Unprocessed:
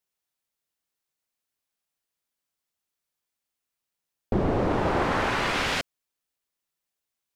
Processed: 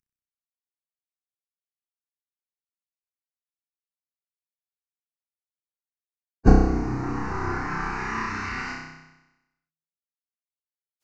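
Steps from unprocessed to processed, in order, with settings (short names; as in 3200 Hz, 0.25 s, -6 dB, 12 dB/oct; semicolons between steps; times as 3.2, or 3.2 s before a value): CVSD 32 kbps; recorder AGC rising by 21 dB/s; fixed phaser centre 1400 Hz, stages 4; de-hum 160.1 Hz, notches 13; plain phase-vocoder stretch 1.5×; on a send: flutter echo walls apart 5.4 m, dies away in 1 s; on the sum: gain -2.5 dB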